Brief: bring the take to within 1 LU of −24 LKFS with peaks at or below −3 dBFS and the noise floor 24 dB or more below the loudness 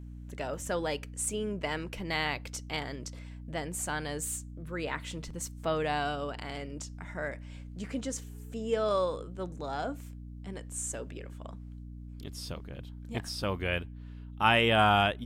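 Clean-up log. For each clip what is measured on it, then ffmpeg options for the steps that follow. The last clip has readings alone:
mains hum 60 Hz; hum harmonics up to 300 Hz; level of the hum −41 dBFS; integrated loudness −32.5 LKFS; sample peak −9.0 dBFS; target loudness −24.0 LKFS
→ -af "bandreject=frequency=60:width_type=h:width=6,bandreject=frequency=120:width_type=h:width=6,bandreject=frequency=180:width_type=h:width=6,bandreject=frequency=240:width_type=h:width=6,bandreject=frequency=300:width_type=h:width=6"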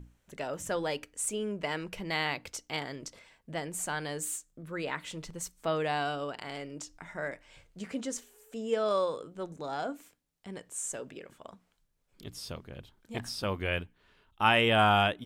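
mains hum none found; integrated loudness −32.5 LKFS; sample peak −9.0 dBFS; target loudness −24.0 LKFS
→ -af "volume=8.5dB,alimiter=limit=-3dB:level=0:latency=1"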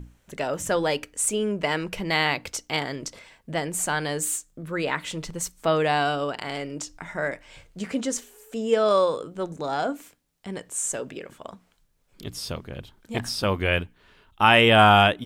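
integrated loudness −24.5 LKFS; sample peak −3.0 dBFS; background noise floor −65 dBFS

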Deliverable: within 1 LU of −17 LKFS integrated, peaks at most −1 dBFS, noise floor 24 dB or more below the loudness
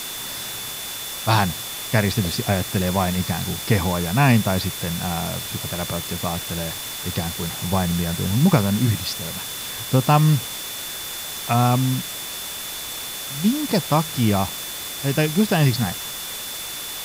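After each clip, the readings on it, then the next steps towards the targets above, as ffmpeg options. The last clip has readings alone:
interfering tone 3,500 Hz; level of the tone −35 dBFS; background noise floor −32 dBFS; target noise floor −47 dBFS; integrated loudness −22.5 LKFS; sample peak −3.5 dBFS; target loudness −17.0 LKFS
→ -af "bandreject=frequency=3500:width=30"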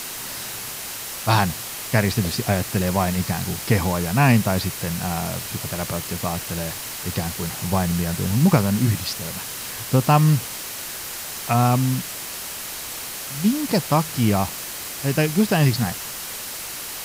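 interfering tone none found; background noise floor −33 dBFS; target noise floor −47 dBFS
→ -af "afftdn=noise_reduction=14:noise_floor=-33"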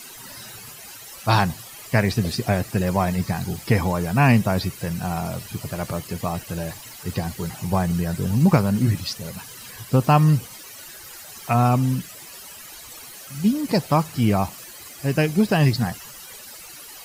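background noise floor −41 dBFS; target noise floor −46 dBFS
→ -af "afftdn=noise_reduction=6:noise_floor=-41"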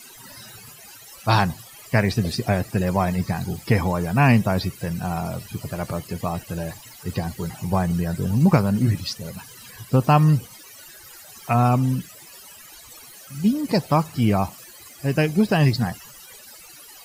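background noise floor −45 dBFS; target noise floor −47 dBFS
→ -af "afftdn=noise_reduction=6:noise_floor=-45"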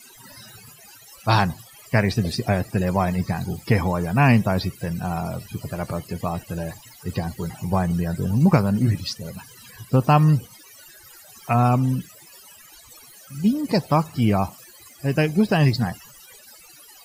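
background noise floor −48 dBFS; integrated loudness −22.5 LKFS; sample peak −4.0 dBFS; target loudness −17.0 LKFS
→ -af "volume=5.5dB,alimiter=limit=-1dB:level=0:latency=1"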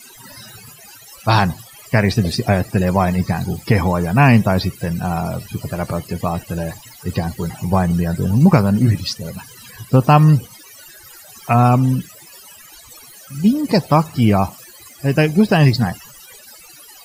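integrated loudness −17.0 LKFS; sample peak −1.0 dBFS; background noise floor −42 dBFS

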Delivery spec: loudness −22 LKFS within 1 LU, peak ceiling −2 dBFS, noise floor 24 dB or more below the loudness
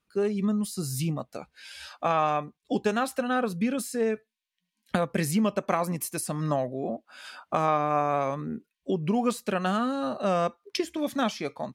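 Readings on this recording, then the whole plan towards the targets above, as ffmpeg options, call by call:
integrated loudness −28.5 LKFS; sample peak −11.5 dBFS; target loudness −22.0 LKFS
→ -af "volume=6.5dB"

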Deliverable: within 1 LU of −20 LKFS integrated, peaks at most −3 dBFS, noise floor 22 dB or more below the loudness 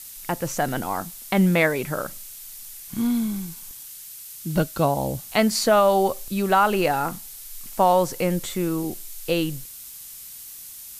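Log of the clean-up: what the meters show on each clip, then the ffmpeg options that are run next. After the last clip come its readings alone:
background noise floor −41 dBFS; target noise floor −45 dBFS; integrated loudness −23.0 LKFS; sample peak −8.0 dBFS; target loudness −20.0 LKFS
→ -af "afftdn=noise_reduction=6:noise_floor=-41"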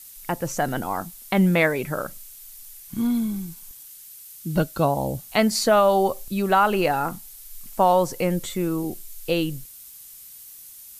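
background noise floor −44 dBFS; target noise floor −45 dBFS
→ -af "afftdn=noise_reduction=6:noise_floor=-44"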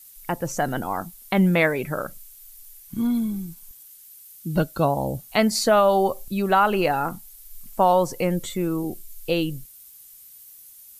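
background noise floor −47 dBFS; integrated loudness −23.0 LKFS; sample peak −8.0 dBFS; target loudness −20.0 LKFS
→ -af "volume=3dB"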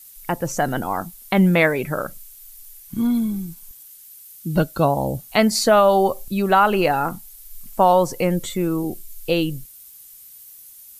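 integrated loudness −20.0 LKFS; sample peak −5.0 dBFS; background noise floor −44 dBFS

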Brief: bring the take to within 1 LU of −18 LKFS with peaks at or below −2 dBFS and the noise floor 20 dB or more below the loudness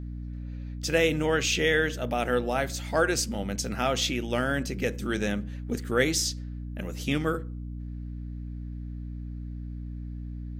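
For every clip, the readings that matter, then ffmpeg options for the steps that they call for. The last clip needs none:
mains hum 60 Hz; hum harmonics up to 300 Hz; level of the hum −34 dBFS; integrated loudness −29.0 LKFS; sample peak −7.5 dBFS; target loudness −18.0 LKFS
→ -af "bandreject=frequency=60:width_type=h:width=4,bandreject=frequency=120:width_type=h:width=4,bandreject=frequency=180:width_type=h:width=4,bandreject=frequency=240:width_type=h:width=4,bandreject=frequency=300:width_type=h:width=4"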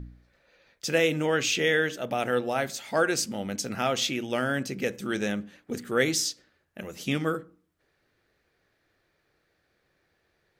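mains hum none found; integrated loudness −27.5 LKFS; sample peak −8.5 dBFS; target loudness −18.0 LKFS
→ -af "volume=9.5dB,alimiter=limit=-2dB:level=0:latency=1"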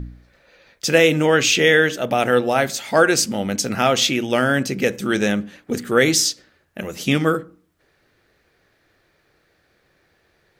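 integrated loudness −18.0 LKFS; sample peak −2.0 dBFS; background noise floor −63 dBFS

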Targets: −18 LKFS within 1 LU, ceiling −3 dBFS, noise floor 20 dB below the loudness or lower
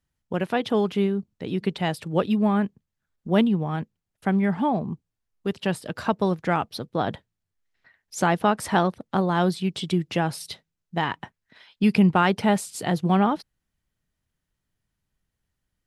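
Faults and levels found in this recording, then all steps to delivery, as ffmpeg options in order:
integrated loudness −24.5 LKFS; sample peak −7.5 dBFS; target loudness −18.0 LKFS
→ -af "volume=6.5dB,alimiter=limit=-3dB:level=0:latency=1"

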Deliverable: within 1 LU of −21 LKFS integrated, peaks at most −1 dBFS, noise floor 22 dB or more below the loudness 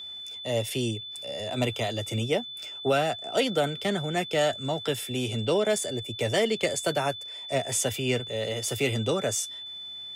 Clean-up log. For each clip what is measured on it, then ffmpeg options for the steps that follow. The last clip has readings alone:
interfering tone 3,500 Hz; level of the tone −37 dBFS; integrated loudness −28.0 LKFS; sample peak −13.0 dBFS; target loudness −21.0 LKFS
→ -af "bandreject=frequency=3500:width=30"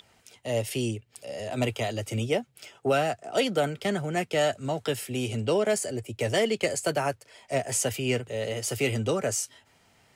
interfering tone none found; integrated loudness −28.5 LKFS; sample peak −13.0 dBFS; target loudness −21.0 LKFS
→ -af "volume=7.5dB"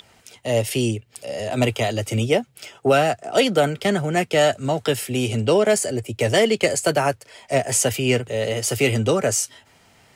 integrated loudness −21.0 LKFS; sample peak −5.5 dBFS; background noise floor −56 dBFS

